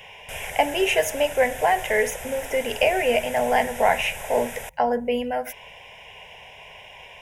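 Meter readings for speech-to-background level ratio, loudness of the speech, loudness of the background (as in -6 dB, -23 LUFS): 12.0 dB, -23.0 LUFS, -35.0 LUFS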